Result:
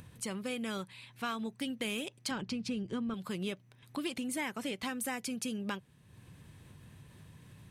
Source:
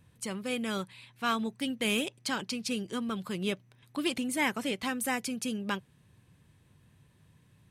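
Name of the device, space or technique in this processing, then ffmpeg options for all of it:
upward and downward compression: -filter_complex "[0:a]asettb=1/sr,asplit=3[s0][s1][s2];[s0]atrim=end=2.314[s3];[s1]atrim=start=2.31:end=3.14,asetpts=PTS-STARTPTS,afade=t=in:d=0.004:c=qsin,afade=t=out:st=0.826:d=0.004:c=qsin,aemphasis=mode=reproduction:type=bsi[s4];[s2]atrim=start=3.136[s5];[s3][s4]acrossfade=d=0.004:c1=hsin:c2=qsin[s6];[s6][s5]acrossfade=d=0.004:c1=qsin:c2=hsin,acompressor=mode=upward:threshold=0.00562:ratio=2.5,acompressor=threshold=0.02:ratio=4"

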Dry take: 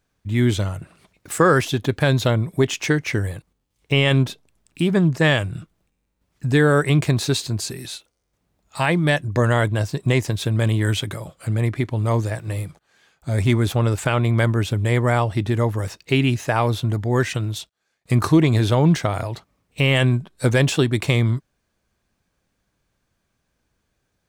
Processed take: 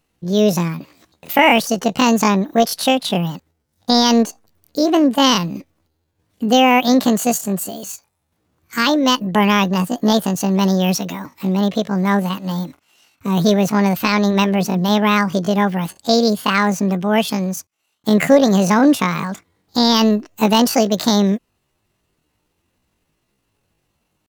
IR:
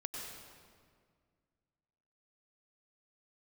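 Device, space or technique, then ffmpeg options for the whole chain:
chipmunk voice: -filter_complex "[0:a]asettb=1/sr,asplit=3[s0][s1][s2];[s0]atrim=end=14.304[s3];[s1]atrim=start=14.3:end=14.9,asetpts=PTS-STARTPTS,afade=t=in:d=0.004:c=qsin,afade=t=out:st=0.596:d=0.004:c=qsin,bandreject=f=60:t=h:w=6,bandreject=f=120:t=h:w=6,bandreject=f=180:t=h:w=6,bandreject=f=240:t=h:w=6[s4];[s2]atrim=start=14.896[s5];[s3][s4]acrossfade=d=0.004:c1=hsin:c2=qsin[s6];[s6][s5]acrossfade=d=0.004:c1=qsin:c2=hsin,asetrate=76340,aresample=44100,atempo=0.577676,volume=1.5"

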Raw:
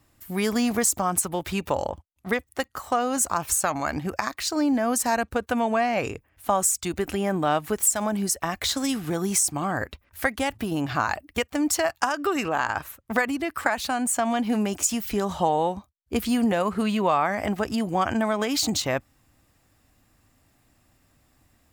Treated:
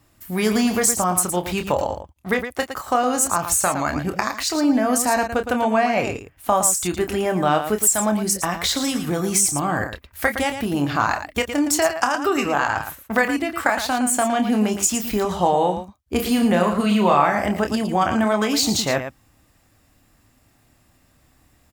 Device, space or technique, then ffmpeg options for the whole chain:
slapback doubling: -filter_complex "[0:a]asplit=3[s0][s1][s2];[s1]adelay=28,volume=0.398[s3];[s2]adelay=113,volume=0.355[s4];[s0][s3][s4]amix=inputs=3:normalize=0,asettb=1/sr,asplit=3[s5][s6][s7];[s5]atrim=end=16.164[s8];[s6]atrim=start=16.16:end=17.45,asetpts=PTS-STARTPTS,afade=t=in:d=0.004:c=qsin,afade=t=out:st=1.286:d=0.004:c=qsin,asplit=2[s9][s10];[s10]adelay=34,volume=0.501[s11];[s9][s11]amix=inputs=2:normalize=0,atrim=end_sample=56889[s12];[s7]atrim=start=17.446[s13];[s8][s12]acrossfade=d=0.004:c1=hsin:c2=qsin[s14];[s14][s13]acrossfade=d=0.004:c1=qsin:c2=hsin,volume=1.5"

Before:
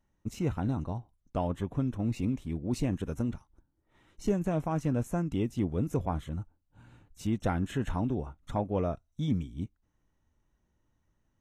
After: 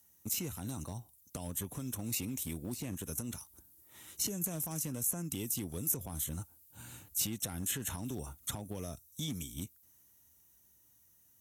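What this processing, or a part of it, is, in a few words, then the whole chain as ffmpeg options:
FM broadcast chain: -filter_complex "[0:a]highpass=f=59:w=0.5412,highpass=f=59:w=1.3066,dynaudnorm=f=210:g=21:m=1.58,acrossover=split=330|4300[s0][s1][s2];[s0]acompressor=threshold=0.0141:ratio=4[s3];[s1]acompressor=threshold=0.00631:ratio=4[s4];[s2]acompressor=threshold=0.001:ratio=4[s5];[s3][s4][s5]amix=inputs=3:normalize=0,aemphasis=mode=production:type=75fm,alimiter=level_in=1.88:limit=0.0631:level=0:latency=1:release=110,volume=0.531,asoftclip=type=hard:threshold=0.0266,lowpass=f=15000:w=0.5412,lowpass=f=15000:w=1.3066,aemphasis=mode=production:type=75fm,asettb=1/sr,asplit=3[s6][s7][s8];[s6]atrim=end=2.434[s9];[s7]atrim=start=2.43:end=3.18,asetpts=PTS-STARTPTS,afade=t=in:d=0.004:c=qsin,afade=t=out:st=0.746:d=0.004:c=qsin,deesser=0.7[s10];[s8]atrim=start=3.176[s11];[s9][s10]acrossfade=d=0.004:c1=hsin:c2=qsin[s12];[s12][s11]acrossfade=d=0.004:c1=qsin:c2=hsin"

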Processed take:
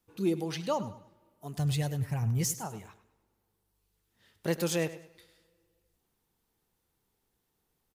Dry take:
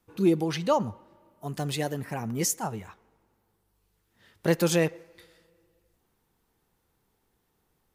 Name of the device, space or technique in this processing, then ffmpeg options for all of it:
exciter from parts: -filter_complex "[0:a]asettb=1/sr,asplit=3[s0][s1][s2];[s0]atrim=end=1.574[s3];[s1]atrim=start=1.57:end=2.54,asetpts=PTS-STARTPTS,afade=t=in:d=0.004:c=qsin,afade=t=out:st=0.966:d=0.004:c=qsin,lowshelf=f=170:t=q:w=1.5:g=13.5[s4];[s2]atrim=start=2.536[s5];[s3][s4]acrossfade=d=0.004:c1=hsin:c2=qsin[s6];[s6][s5]acrossfade=d=0.004:c1=qsin:c2=hsin,asplit=2[s7][s8];[s8]highpass=2200,asoftclip=type=tanh:threshold=0.0266,volume=0.631[s9];[s7][s9]amix=inputs=2:normalize=0,aecho=1:1:101|202|303:0.178|0.0605|0.0206,volume=0.473"

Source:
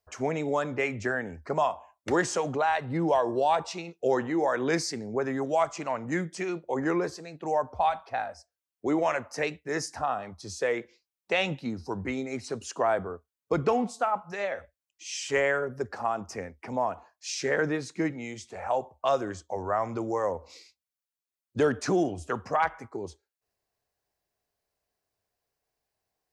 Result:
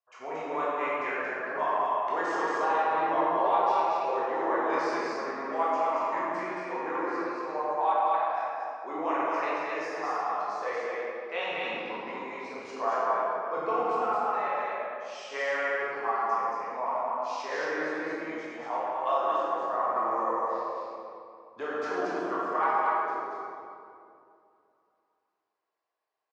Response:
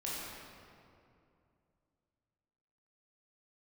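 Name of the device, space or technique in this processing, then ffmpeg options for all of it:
station announcement: -filter_complex "[0:a]highpass=470,lowpass=3600,equalizer=f=1100:t=o:w=0.51:g=9,aecho=1:1:93.29|227.4:0.251|0.794[s0];[1:a]atrim=start_sample=2205[s1];[s0][s1]afir=irnorm=-1:irlink=0,volume=0.501"

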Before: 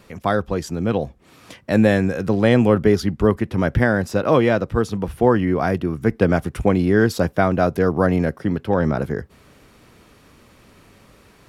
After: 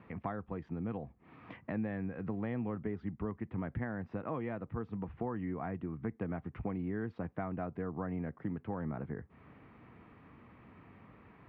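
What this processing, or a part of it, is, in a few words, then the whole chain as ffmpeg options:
bass amplifier: -af "acompressor=threshold=0.0224:ratio=3,highpass=78,equalizer=f=390:t=q:w=4:g=-5,equalizer=f=560:t=q:w=4:g=-8,equalizer=f=1500:t=q:w=4:g=-6,lowpass=f=2100:w=0.5412,lowpass=f=2100:w=1.3066,volume=0.631"

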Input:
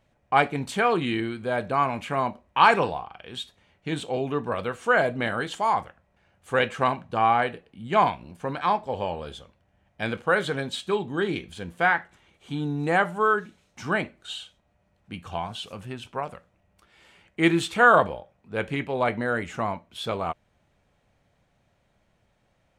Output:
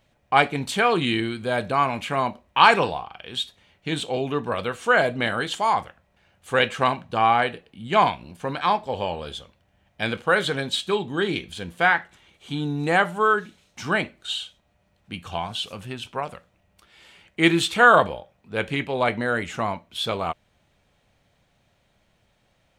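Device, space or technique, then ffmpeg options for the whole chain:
presence and air boost: -filter_complex "[0:a]equalizer=f=3600:t=o:w=1.3:g=5.5,highshelf=f=9300:g=7,asettb=1/sr,asplit=3[s0][s1][s2];[s0]atrim=end=0.964[s3];[s1]atrim=start=0.96:end=1.72,asetpts=PTS-STARTPTS,afade=t=in:d=0.004:c=qsin,afade=t=out:st=0.756:d=0.004:c=qsin,bass=f=250:g=2,treble=f=4000:g=3[s4];[s2]atrim=start=1.716[s5];[s3][s4]acrossfade=d=0.004:c1=hsin:c2=qsin[s6];[s6][s5]acrossfade=d=0.004:c1=qsin:c2=hsin,volume=1.19"

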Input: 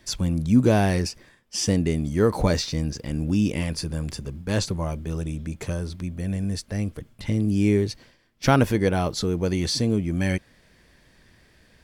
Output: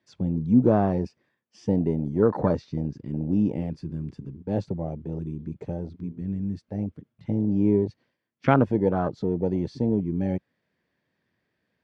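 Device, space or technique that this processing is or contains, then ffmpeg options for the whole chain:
over-cleaned archive recording: -af "highpass=68,highpass=120,lowpass=5800,afwtdn=0.0501,highshelf=f=4100:g=-11.5"

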